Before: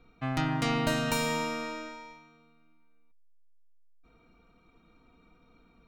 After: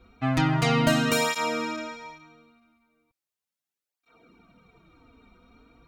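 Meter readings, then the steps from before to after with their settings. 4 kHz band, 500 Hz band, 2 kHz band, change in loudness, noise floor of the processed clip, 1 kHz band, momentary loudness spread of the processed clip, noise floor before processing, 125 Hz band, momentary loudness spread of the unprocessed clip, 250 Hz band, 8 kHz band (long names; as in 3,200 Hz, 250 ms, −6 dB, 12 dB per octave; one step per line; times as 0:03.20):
+5.5 dB, +6.0 dB, +5.5 dB, +6.0 dB, below −85 dBFS, +5.0 dB, 14 LU, −63 dBFS, +7.0 dB, 16 LU, +6.0 dB, +5.5 dB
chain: through-zero flanger with one copy inverted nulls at 0.37 Hz, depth 6.9 ms
level +8.5 dB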